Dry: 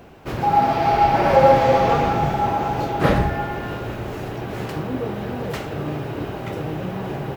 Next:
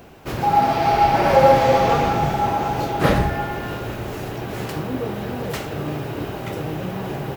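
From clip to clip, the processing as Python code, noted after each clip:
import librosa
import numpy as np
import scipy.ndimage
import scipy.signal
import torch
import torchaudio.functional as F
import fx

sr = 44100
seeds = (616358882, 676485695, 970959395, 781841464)

y = fx.high_shelf(x, sr, hz=4600.0, db=7.5)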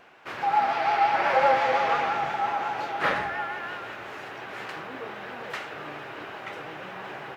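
y = fx.bandpass_q(x, sr, hz=1700.0, q=1.1)
y = fx.vibrato(y, sr, rate_hz=5.7, depth_cents=53.0)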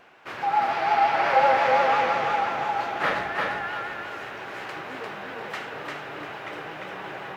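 y = fx.echo_feedback(x, sr, ms=348, feedback_pct=29, wet_db=-3.0)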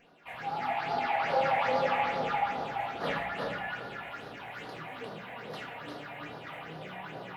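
y = fx.phaser_stages(x, sr, stages=6, low_hz=330.0, high_hz=2400.0, hz=2.4, feedback_pct=35)
y = fx.room_shoebox(y, sr, seeds[0], volume_m3=680.0, walls='furnished', distance_m=1.8)
y = F.gain(torch.from_numpy(y), -5.5).numpy()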